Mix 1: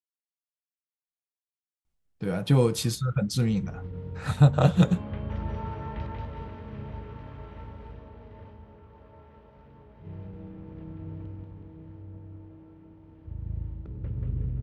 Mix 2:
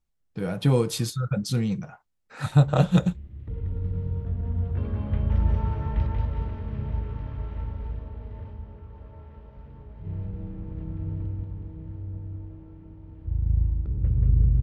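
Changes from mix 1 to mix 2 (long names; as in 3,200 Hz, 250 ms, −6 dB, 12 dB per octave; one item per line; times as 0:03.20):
speech: entry −1.85 s
background: remove high-pass filter 250 Hz 6 dB per octave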